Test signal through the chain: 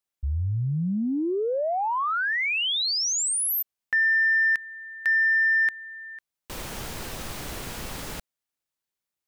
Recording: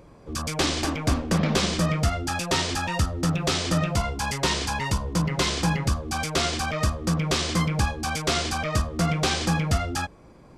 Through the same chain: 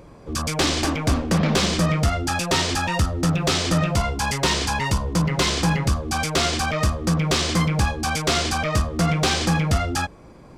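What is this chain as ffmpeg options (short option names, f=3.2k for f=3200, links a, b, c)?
-af "acontrast=86,asoftclip=type=tanh:threshold=-8dB,volume=-2.5dB"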